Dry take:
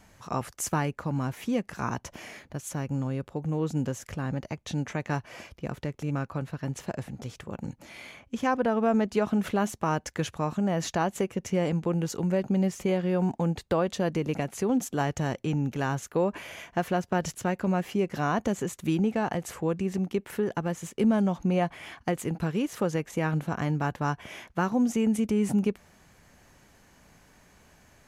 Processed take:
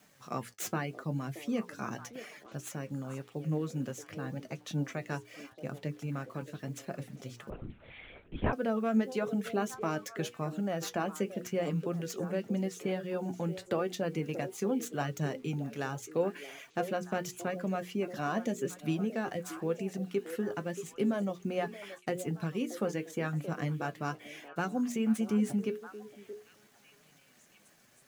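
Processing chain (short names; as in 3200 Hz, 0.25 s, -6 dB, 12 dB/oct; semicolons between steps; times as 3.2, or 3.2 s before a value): tracing distortion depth 0.058 ms; reverb removal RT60 0.63 s; HPF 130 Hz 24 dB/oct; bell 930 Hz -8 dB 0.34 oct; notches 60/120/180/240/300/360/420/480 Hz; bit-crush 10-bit; flange 0.85 Hz, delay 6.4 ms, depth 3.5 ms, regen +57%; delay with a stepping band-pass 0.626 s, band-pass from 440 Hz, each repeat 1.4 oct, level -9 dB; 7.5–8.53 LPC vocoder at 8 kHz whisper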